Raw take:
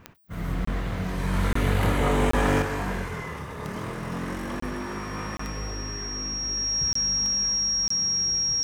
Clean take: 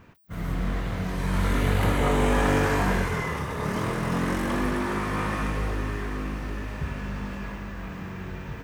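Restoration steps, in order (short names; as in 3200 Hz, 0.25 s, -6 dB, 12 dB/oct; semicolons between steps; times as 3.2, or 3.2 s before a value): de-click; notch 5600 Hz, Q 30; interpolate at 0.65/1.53/2.31/4.6/5.37/6.93/7.88, 24 ms; gain 0 dB, from 2.62 s +5.5 dB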